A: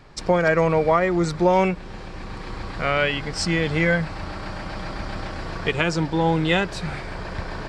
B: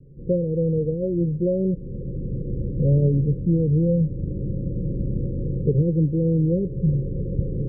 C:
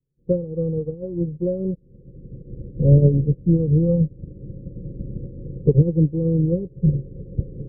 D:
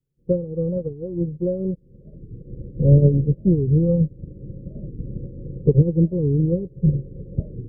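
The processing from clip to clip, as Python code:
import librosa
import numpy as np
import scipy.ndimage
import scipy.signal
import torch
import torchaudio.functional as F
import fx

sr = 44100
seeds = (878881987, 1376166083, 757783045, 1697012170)

y1 = scipy.signal.sosfilt(scipy.signal.cheby1(10, 1.0, 550.0, 'lowpass', fs=sr, output='sos'), x)
y1 = fx.rider(y1, sr, range_db=5, speed_s=0.5)
y1 = fx.peak_eq(y1, sr, hz=140.0, db=12.0, octaves=0.49)
y2 = fx.upward_expand(y1, sr, threshold_db=-41.0, expansion=2.5)
y2 = y2 * librosa.db_to_amplitude(7.0)
y3 = fx.record_warp(y2, sr, rpm=45.0, depth_cents=250.0)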